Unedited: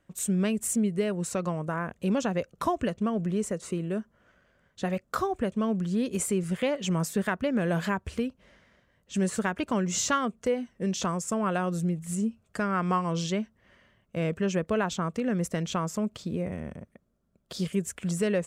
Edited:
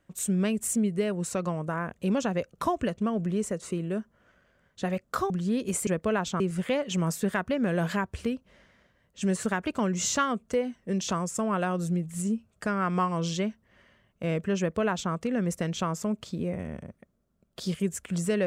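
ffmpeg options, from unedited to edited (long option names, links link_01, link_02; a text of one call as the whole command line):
ffmpeg -i in.wav -filter_complex "[0:a]asplit=4[link_01][link_02][link_03][link_04];[link_01]atrim=end=5.302[link_05];[link_02]atrim=start=5.758:end=6.332[link_06];[link_03]atrim=start=14.518:end=15.052[link_07];[link_04]atrim=start=6.328[link_08];[link_05][link_06]acrossfade=duration=0.004:curve1=hsin:curve2=hsin[link_09];[link_09][link_07]acrossfade=duration=0.004:curve1=hsin:curve2=hsin[link_10];[link_10][link_08]acrossfade=duration=0.004:curve1=hsin:curve2=hsin" out.wav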